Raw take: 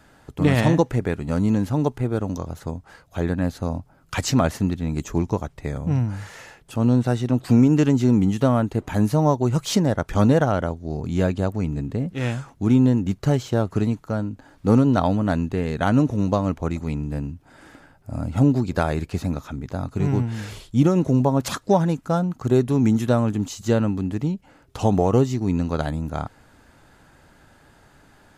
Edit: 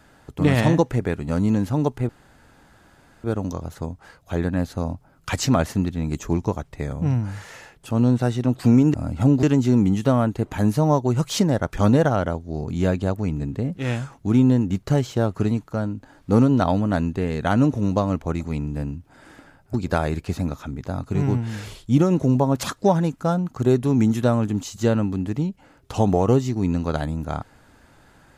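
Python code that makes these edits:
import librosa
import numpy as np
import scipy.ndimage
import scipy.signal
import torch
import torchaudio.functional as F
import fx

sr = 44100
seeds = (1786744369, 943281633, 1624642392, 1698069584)

y = fx.edit(x, sr, fx.insert_room_tone(at_s=2.09, length_s=1.15),
    fx.move(start_s=18.1, length_s=0.49, to_s=7.79), tone=tone)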